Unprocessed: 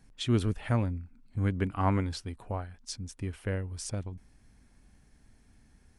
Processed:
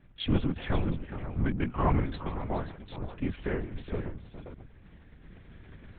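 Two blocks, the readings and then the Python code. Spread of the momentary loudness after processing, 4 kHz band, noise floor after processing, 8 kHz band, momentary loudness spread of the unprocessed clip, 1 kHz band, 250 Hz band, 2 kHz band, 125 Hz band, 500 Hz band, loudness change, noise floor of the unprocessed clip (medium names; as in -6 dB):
19 LU, -1.0 dB, -55 dBFS, under -35 dB, 12 LU, +1.0 dB, +1.0 dB, +1.5 dB, -1.5 dB, +1.5 dB, 0.0 dB, -62 dBFS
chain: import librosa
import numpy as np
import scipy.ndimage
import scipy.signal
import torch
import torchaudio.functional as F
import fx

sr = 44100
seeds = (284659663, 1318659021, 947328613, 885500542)

y = fx.recorder_agc(x, sr, target_db=-23.0, rise_db_per_s=5.3, max_gain_db=30)
y = fx.echo_multitap(y, sr, ms=(154, 416, 529), db=(-18.0, -12.0, -12.0))
y = fx.lpc_vocoder(y, sr, seeds[0], excitation='whisper', order=8)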